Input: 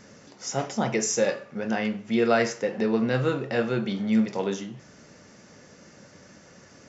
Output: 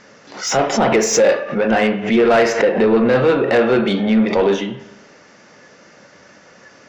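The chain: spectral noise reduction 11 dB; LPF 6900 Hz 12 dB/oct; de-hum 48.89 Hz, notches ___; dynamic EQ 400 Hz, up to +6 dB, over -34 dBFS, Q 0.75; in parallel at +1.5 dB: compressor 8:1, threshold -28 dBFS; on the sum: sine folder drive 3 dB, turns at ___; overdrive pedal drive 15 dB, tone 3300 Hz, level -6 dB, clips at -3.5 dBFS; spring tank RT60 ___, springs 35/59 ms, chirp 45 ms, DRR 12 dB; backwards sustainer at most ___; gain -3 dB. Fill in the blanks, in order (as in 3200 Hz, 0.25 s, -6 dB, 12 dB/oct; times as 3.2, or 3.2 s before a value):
2, -4 dBFS, 1.1 s, 110 dB/s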